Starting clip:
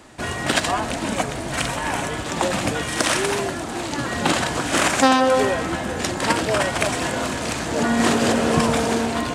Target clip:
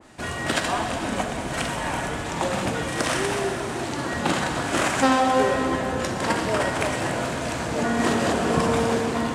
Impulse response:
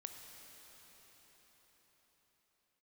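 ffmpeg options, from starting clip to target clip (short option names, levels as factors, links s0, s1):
-filter_complex "[1:a]atrim=start_sample=2205,asetrate=70560,aresample=44100[s0];[0:a][s0]afir=irnorm=-1:irlink=0,adynamicequalizer=threshold=0.01:dfrequency=2100:dqfactor=0.7:tfrequency=2100:tqfactor=0.7:attack=5:release=100:ratio=0.375:range=2:mode=cutabove:tftype=highshelf,volume=2"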